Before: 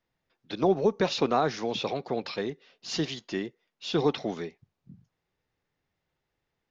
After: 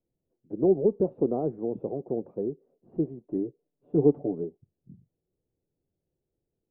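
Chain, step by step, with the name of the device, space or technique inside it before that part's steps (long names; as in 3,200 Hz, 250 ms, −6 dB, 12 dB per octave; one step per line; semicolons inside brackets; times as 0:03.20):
under water (low-pass filter 560 Hz 24 dB per octave; parametric band 350 Hz +4.5 dB 0.41 octaves)
0:03.26–0:04.44: comb filter 6.9 ms, depth 68%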